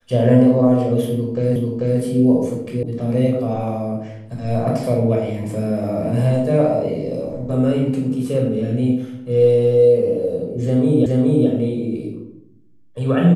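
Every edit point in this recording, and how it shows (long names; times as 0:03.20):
0:01.56: the same again, the last 0.44 s
0:02.83: cut off before it has died away
0:11.06: the same again, the last 0.42 s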